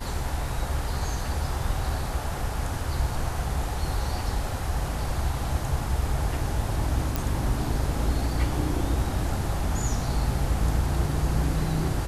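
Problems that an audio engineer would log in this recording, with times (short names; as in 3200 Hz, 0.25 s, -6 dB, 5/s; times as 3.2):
7.16 pop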